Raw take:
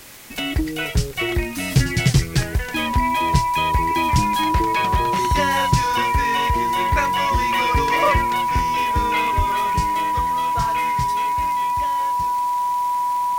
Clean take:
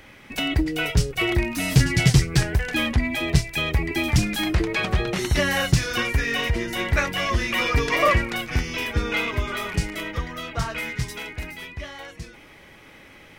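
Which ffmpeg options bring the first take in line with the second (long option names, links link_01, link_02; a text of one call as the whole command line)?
ffmpeg -i in.wav -filter_complex "[0:a]adeclick=threshold=4,bandreject=frequency=980:width=30,asplit=3[link_01][link_02][link_03];[link_01]afade=type=out:start_time=9.37:duration=0.02[link_04];[link_02]highpass=frequency=140:width=0.5412,highpass=frequency=140:width=1.3066,afade=type=in:start_time=9.37:duration=0.02,afade=type=out:start_time=9.49:duration=0.02[link_05];[link_03]afade=type=in:start_time=9.49:duration=0.02[link_06];[link_04][link_05][link_06]amix=inputs=3:normalize=0,afwtdn=0.0079" out.wav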